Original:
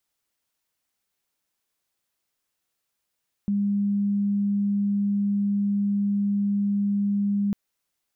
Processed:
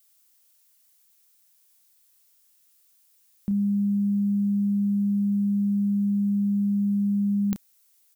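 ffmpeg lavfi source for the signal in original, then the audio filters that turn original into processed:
-f lavfi -i "aevalsrc='0.0944*sin(2*PI*202*t)':duration=4.05:sample_rate=44100"
-filter_complex "[0:a]crystalizer=i=4.5:c=0,asplit=2[link_01][link_02];[link_02]adelay=31,volume=-9.5dB[link_03];[link_01][link_03]amix=inputs=2:normalize=0"

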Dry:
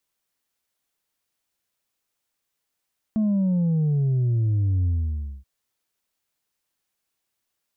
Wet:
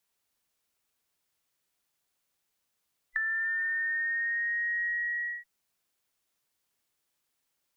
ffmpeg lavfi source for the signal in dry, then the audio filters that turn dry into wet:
-f lavfi -i "aevalsrc='0.112*clip((2.28-t)/0.58,0,1)*tanh(1.33*sin(2*PI*220*2.28/log(65/220)*(exp(log(65/220)*t/2.28)-1)))/tanh(1.33)':duration=2.28:sample_rate=44100"
-filter_complex "[0:a]afftfilt=real='real(if(between(b,1,1012),(2*floor((b-1)/92)+1)*92-b,b),0)':imag='imag(if(between(b,1,1012),(2*floor((b-1)/92)+1)*92-b,b),0)*if(between(b,1,1012),-1,1)':win_size=2048:overlap=0.75,acrossover=split=150|210|350[link_01][link_02][link_03][link_04];[link_02]acrusher=samples=26:mix=1:aa=0.000001:lfo=1:lforange=26:lforate=0.81[link_05];[link_04]acompressor=threshold=-30dB:ratio=6[link_06];[link_01][link_05][link_03][link_06]amix=inputs=4:normalize=0"

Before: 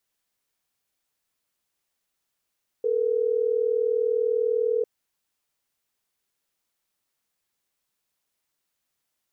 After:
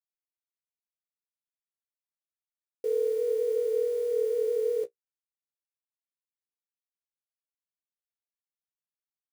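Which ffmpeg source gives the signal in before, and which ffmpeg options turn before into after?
-f lavfi -i "aevalsrc='0.0668*(sin(2*PI*440*t)+sin(2*PI*480*t))*clip(min(mod(t,6),2-mod(t,6))/0.005,0,1)':duration=3.12:sample_rate=44100"
-af "anlmdn=2.51,acrusher=bits=8:dc=4:mix=0:aa=0.000001,flanger=delay=7.8:depth=8.3:regen=-28:speed=0.5:shape=sinusoidal"

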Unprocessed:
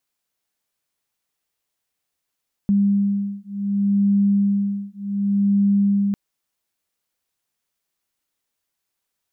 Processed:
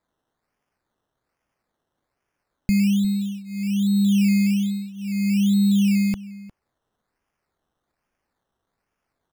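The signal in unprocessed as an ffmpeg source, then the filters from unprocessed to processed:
-f lavfi -i "aevalsrc='0.106*(sin(2*PI*200*t)+sin(2*PI*200.67*t))':duration=3.45:sample_rate=44100"
-filter_complex "[0:a]asubboost=boost=4:cutoff=120,acrusher=samples=15:mix=1:aa=0.000001:lfo=1:lforange=9:lforate=1.2,asplit=2[link_01][link_02];[link_02]adelay=355.7,volume=-18dB,highshelf=frequency=4000:gain=-8[link_03];[link_01][link_03]amix=inputs=2:normalize=0"

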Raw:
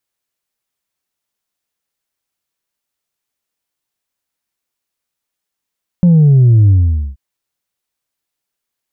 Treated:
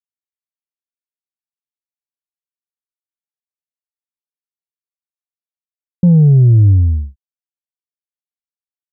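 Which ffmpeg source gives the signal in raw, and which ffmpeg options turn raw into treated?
-f lavfi -i "aevalsrc='0.562*clip((1.13-t)/0.47,0,1)*tanh(1.19*sin(2*PI*180*1.13/log(65/180)*(exp(log(65/180)*t/1.13)-1)))/tanh(1.19)':duration=1.13:sample_rate=44100"
-af "agate=range=-33dB:threshold=-15dB:ratio=3:detection=peak"

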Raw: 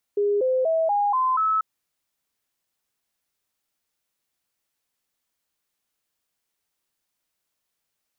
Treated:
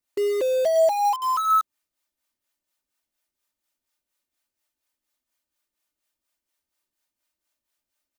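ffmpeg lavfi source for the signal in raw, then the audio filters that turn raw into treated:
-f lavfi -i "aevalsrc='0.119*clip(min(mod(t,0.24),0.24-mod(t,0.24))/0.005,0,1)*sin(2*PI*409*pow(2,floor(t/0.24)/3)*mod(t,0.24))':duration=1.44:sample_rate=44100"
-filter_complex "[0:a]acrossover=split=490[link_01][link_02];[link_01]aeval=exprs='val(0)*(1-0.7/2+0.7/2*cos(2*PI*4.2*n/s))':channel_layout=same[link_03];[link_02]aeval=exprs='val(0)*(1-0.7/2-0.7/2*cos(2*PI*4.2*n/s))':channel_layout=same[link_04];[link_03][link_04]amix=inputs=2:normalize=0,aecho=1:1:3.3:0.62,asplit=2[link_05][link_06];[link_06]acrusher=bits=4:mix=0:aa=0.000001,volume=-5dB[link_07];[link_05][link_07]amix=inputs=2:normalize=0"

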